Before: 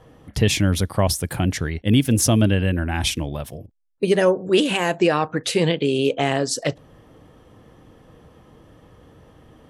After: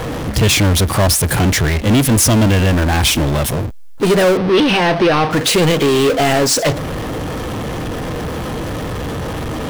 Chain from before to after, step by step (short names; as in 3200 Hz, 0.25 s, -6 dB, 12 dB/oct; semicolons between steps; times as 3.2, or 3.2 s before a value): power-law curve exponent 0.35; 4.37–5.31 polynomial smoothing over 15 samples